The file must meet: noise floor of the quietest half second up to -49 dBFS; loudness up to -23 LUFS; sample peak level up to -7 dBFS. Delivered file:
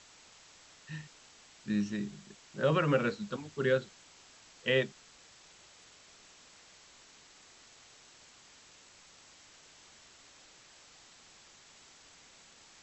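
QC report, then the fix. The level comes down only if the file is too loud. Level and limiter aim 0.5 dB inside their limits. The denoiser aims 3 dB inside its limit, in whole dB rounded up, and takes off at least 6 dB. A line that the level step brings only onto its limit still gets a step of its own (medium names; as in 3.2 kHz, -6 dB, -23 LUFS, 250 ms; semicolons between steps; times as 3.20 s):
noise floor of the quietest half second -58 dBFS: pass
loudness -32.5 LUFS: pass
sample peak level -15.0 dBFS: pass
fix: none needed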